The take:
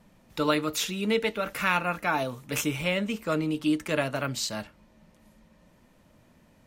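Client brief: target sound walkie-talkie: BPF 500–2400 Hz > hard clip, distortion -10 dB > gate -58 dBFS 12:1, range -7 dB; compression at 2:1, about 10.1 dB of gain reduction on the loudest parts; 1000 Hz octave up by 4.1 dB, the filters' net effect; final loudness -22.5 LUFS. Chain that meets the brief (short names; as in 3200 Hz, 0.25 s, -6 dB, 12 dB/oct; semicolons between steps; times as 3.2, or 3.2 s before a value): bell 1000 Hz +6 dB; compressor 2:1, threshold -35 dBFS; BPF 500–2400 Hz; hard clip -31.5 dBFS; gate -58 dBFS 12:1, range -7 dB; gain +16.5 dB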